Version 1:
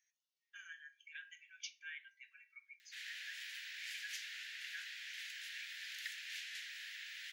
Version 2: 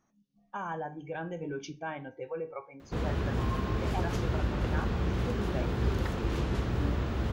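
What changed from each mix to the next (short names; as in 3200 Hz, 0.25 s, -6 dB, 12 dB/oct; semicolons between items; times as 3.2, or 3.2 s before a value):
master: remove steep high-pass 1700 Hz 72 dB/oct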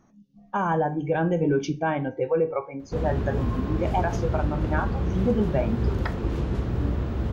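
speech +11.5 dB; master: add tilt shelf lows +4.5 dB, about 890 Hz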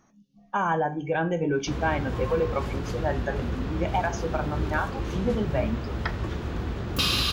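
background: entry -1.25 s; master: add tilt shelf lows -4.5 dB, about 890 Hz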